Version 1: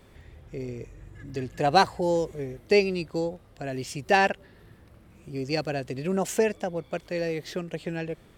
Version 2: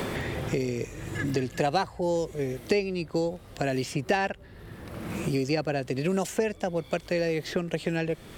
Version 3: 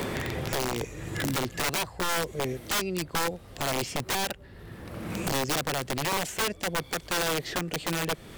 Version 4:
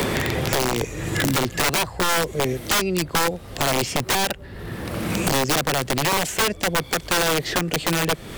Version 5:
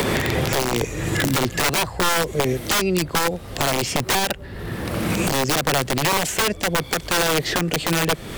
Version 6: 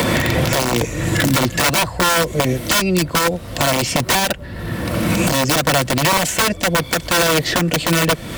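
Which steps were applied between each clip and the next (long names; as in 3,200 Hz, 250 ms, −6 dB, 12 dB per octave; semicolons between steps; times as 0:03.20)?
multiband upward and downward compressor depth 100%
wrap-around overflow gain 22 dB
multiband upward and downward compressor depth 40%; level +7.5 dB
brickwall limiter −10.5 dBFS, peak gain reduction 6.5 dB; level +3 dB
notch comb filter 410 Hz; level +5.5 dB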